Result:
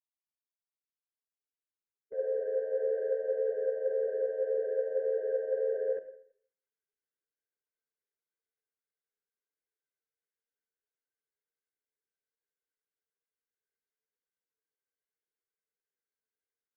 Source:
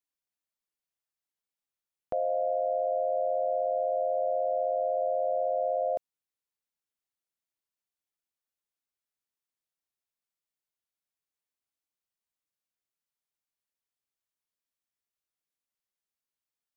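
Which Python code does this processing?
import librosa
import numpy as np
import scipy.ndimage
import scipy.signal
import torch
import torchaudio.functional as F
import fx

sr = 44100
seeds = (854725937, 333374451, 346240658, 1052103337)

p1 = fx.fade_in_head(x, sr, length_s=5.05)
p2 = fx.low_shelf(p1, sr, hz=440.0, db=-3.5)
p3 = fx.over_compress(p2, sr, threshold_db=-34.0, ratio=-0.5)
p4 = p2 + (p3 * librosa.db_to_amplitude(-1.0))
p5 = 10.0 ** (-24.5 / 20.0) * np.tanh(p4 / 10.0 ** (-24.5 / 20.0))
p6 = fx.formant_cascade(p5, sr, vowel='e')
p7 = fx.formant_shift(p6, sr, semitones=-3)
p8 = p7 + fx.echo_feedback(p7, sr, ms=82, feedback_pct=46, wet_db=-17.0, dry=0)
p9 = fx.rev_schroeder(p8, sr, rt60_s=0.6, comb_ms=32, drr_db=12.5)
p10 = fx.ensemble(p9, sr)
y = p10 * librosa.db_to_amplitude(6.0)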